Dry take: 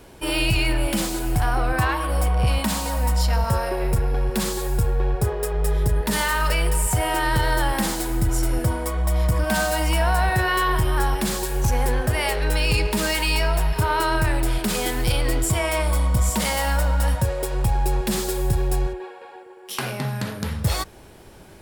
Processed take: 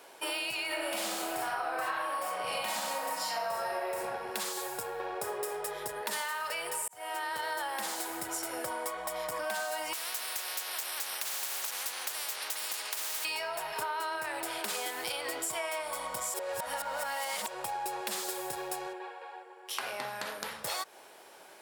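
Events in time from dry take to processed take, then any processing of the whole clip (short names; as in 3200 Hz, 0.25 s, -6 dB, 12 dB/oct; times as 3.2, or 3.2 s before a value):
0.67–4.06 reverb throw, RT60 1 s, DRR -6.5 dB
4.9–5.5 reverb throw, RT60 1.1 s, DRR 4 dB
6.88–7.6 fade in
9.93–13.25 spectral compressor 10:1
16.34–17.48 reverse
18.99–20.26 high shelf 8100 Hz -4.5 dB
whole clip: Chebyshev high-pass 680 Hz, order 2; compressor, threshold -30 dBFS; gain -2 dB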